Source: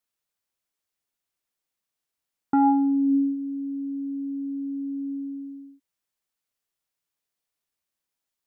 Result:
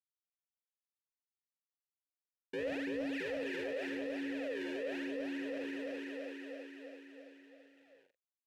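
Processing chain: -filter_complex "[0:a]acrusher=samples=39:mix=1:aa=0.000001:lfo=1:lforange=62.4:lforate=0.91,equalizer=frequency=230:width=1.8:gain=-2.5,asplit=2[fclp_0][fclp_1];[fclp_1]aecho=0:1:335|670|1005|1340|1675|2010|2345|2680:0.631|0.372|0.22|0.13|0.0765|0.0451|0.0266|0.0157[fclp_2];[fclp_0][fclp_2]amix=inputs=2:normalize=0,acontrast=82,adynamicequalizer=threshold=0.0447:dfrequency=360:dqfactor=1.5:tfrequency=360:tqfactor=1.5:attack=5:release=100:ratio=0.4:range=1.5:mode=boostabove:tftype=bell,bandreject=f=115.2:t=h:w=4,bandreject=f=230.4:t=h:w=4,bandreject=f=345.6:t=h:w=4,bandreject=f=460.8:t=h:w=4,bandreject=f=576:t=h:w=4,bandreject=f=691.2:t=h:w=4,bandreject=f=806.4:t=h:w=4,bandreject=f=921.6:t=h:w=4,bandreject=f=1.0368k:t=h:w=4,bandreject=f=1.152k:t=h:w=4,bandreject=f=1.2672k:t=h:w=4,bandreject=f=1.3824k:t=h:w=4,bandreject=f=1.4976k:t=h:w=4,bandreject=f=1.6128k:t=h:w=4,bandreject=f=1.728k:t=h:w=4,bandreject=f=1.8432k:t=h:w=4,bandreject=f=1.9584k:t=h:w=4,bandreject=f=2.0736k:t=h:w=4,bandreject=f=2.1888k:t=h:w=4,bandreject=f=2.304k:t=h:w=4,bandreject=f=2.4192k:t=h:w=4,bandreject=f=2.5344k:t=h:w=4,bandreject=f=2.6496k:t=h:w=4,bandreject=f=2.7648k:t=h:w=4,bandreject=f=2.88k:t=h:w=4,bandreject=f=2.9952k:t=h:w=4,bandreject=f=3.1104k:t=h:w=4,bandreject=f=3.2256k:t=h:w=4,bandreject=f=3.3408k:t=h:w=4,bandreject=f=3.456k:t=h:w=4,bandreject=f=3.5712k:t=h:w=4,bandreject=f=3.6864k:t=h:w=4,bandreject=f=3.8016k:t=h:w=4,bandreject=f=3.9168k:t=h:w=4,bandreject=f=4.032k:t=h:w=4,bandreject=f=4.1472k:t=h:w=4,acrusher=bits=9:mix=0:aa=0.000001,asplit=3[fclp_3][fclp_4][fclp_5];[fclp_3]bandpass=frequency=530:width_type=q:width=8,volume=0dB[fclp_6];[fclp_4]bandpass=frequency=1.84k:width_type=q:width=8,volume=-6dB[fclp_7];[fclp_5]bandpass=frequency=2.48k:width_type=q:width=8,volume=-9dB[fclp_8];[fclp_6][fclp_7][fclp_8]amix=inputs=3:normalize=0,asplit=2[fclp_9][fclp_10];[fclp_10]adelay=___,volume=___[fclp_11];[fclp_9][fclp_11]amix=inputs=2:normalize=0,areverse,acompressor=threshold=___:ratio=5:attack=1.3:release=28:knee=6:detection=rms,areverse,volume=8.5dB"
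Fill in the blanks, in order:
44, -9dB, -46dB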